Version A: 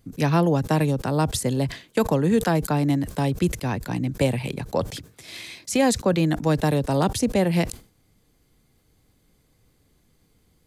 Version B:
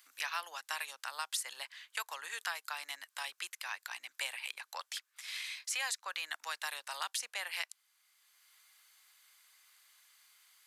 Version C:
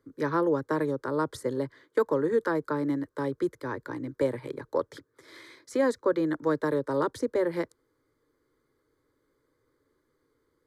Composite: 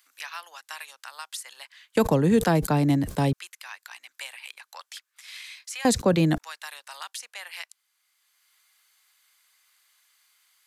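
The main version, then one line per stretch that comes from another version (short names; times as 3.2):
B
1.96–3.33 from A
5.85–6.38 from A
not used: C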